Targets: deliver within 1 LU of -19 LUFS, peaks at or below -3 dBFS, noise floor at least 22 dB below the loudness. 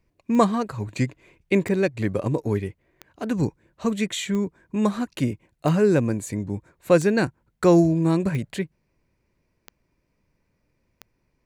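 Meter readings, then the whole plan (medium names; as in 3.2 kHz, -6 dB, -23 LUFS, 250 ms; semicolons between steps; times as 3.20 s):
clicks found 9; loudness -23.5 LUFS; peak level -5.0 dBFS; loudness target -19.0 LUFS
-> de-click; trim +4.5 dB; peak limiter -3 dBFS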